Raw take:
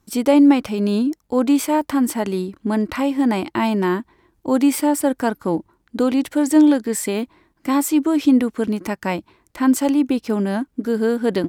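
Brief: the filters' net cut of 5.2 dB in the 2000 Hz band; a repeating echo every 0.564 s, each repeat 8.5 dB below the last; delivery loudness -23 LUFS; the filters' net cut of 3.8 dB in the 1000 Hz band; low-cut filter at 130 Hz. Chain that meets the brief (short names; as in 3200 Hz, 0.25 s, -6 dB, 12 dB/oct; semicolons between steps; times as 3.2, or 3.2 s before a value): HPF 130 Hz; bell 1000 Hz -3.5 dB; bell 2000 Hz -5.5 dB; feedback echo 0.564 s, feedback 38%, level -8.5 dB; gain -3.5 dB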